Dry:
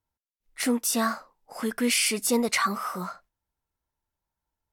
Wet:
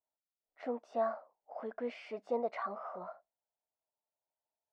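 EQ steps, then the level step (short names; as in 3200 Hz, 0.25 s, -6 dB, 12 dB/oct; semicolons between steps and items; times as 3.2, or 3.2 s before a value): band-pass 650 Hz, Q 4.5; air absorption 170 m; +2.5 dB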